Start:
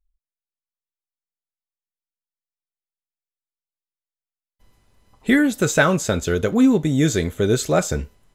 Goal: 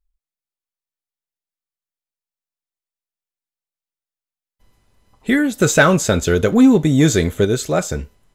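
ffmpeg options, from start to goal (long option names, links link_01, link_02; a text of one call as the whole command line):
ffmpeg -i in.wav -filter_complex "[0:a]asettb=1/sr,asplit=3[link_01][link_02][link_03];[link_01]atrim=end=5.604[link_04];[link_02]atrim=start=5.6:end=7.45,asetpts=PTS-STARTPTS,afade=type=in:duration=0.004:curve=qsin,afade=type=out:start_time=1.846:duration=0.004:curve=qsin,acontrast=33[link_05];[link_03]atrim=start=7.446[link_06];[link_04][link_05]acrossfade=duration=0.004:curve1=hsin:curve2=qsin[link_07];[link_07][link_06]acrossfade=duration=0.004:curve1=qsin:curve2=hsin" out.wav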